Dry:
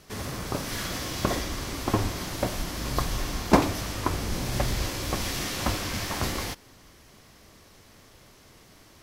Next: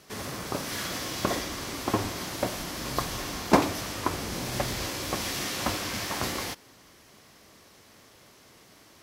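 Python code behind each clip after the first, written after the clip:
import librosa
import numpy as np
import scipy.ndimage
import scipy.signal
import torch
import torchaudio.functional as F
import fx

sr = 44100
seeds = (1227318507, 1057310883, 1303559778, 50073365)

y = fx.highpass(x, sr, hz=180.0, slope=6)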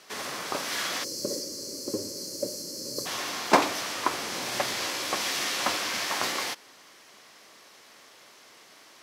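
y = fx.weighting(x, sr, curve='A')
y = fx.spec_box(y, sr, start_s=1.04, length_s=2.02, low_hz=620.0, high_hz=4100.0, gain_db=-25)
y = F.gain(torch.from_numpy(y), 3.0).numpy()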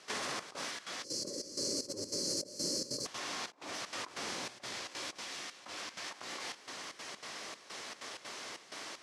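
y = scipy.signal.sosfilt(scipy.signal.butter(4, 9600.0, 'lowpass', fs=sr, output='sos'), x)
y = fx.over_compress(y, sr, threshold_db=-41.0, ratio=-1.0)
y = fx.step_gate(y, sr, bpm=191, pattern='.xxxx..xxx.xx', floor_db=-12.0, edge_ms=4.5)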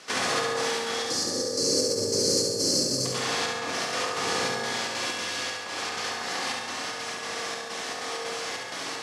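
y = fx.room_flutter(x, sr, wall_m=11.9, rt60_s=0.94)
y = fx.rev_fdn(y, sr, rt60_s=2.4, lf_ratio=0.9, hf_ratio=0.35, size_ms=12.0, drr_db=0.5)
y = F.gain(torch.from_numpy(y), 8.5).numpy()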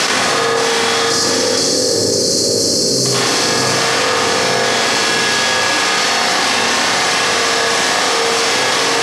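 y = x + 10.0 ** (-5.0 / 20.0) * np.pad(x, (int(664 * sr / 1000.0), 0))[:len(x)]
y = fx.env_flatten(y, sr, amount_pct=100)
y = F.gain(torch.from_numpy(y), 7.5).numpy()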